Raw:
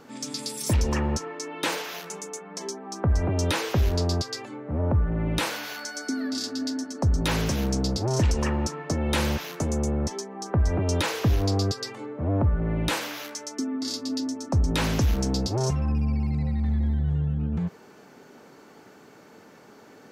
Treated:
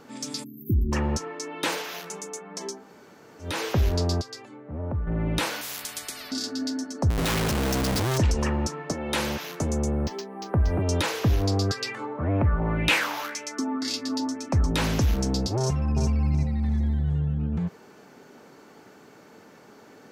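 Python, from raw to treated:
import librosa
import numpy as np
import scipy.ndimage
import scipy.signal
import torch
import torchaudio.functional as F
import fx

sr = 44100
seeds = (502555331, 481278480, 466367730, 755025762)

y = fx.spec_erase(x, sr, start_s=0.44, length_s=0.48, low_hz=410.0, high_hz=12000.0)
y = fx.spectral_comp(y, sr, ratio=10.0, at=(5.61, 6.32))
y = fx.schmitt(y, sr, flips_db=-37.0, at=(7.1, 8.18))
y = fx.highpass(y, sr, hz=fx.line((8.91, 410.0), (9.41, 170.0)), slope=6, at=(8.91, 9.41), fade=0.02)
y = fx.resample_linear(y, sr, factor=4, at=(9.92, 10.82))
y = fx.bell_lfo(y, sr, hz=1.9, low_hz=870.0, high_hz=2600.0, db=14, at=(11.69, 14.67), fade=0.02)
y = fx.echo_throw(y, sr, start_s=15.59, length_s=0.47, ms=370, feedback_pct=20, wet_db=-5.0)
y = fx.high_shelf(y, sr, hz=7000.0, db=8.0, at=(16.62, 17.2))
y = fx.edit(y, sr, fx.room_tone_fill(start_s=2.79, length_s=0.72, crossfade_s=0.24),
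    fx.clip_gain(start_s=4.21, length_s=0.86, db=-6.5), tone=tone)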